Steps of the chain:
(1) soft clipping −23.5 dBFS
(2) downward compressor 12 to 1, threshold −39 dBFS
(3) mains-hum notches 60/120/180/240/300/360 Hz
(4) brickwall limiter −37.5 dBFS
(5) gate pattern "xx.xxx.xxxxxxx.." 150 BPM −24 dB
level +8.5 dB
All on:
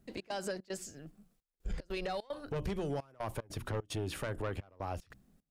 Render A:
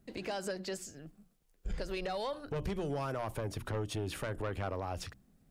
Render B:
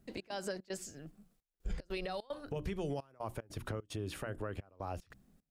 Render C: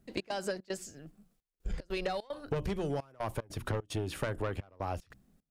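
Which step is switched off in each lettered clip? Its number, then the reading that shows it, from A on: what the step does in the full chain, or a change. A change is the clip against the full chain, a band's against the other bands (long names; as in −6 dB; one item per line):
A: 5, change in momentary loudness spread +1 LU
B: 1, distortion level −9 dB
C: 4, change in crest factor +7.0 dB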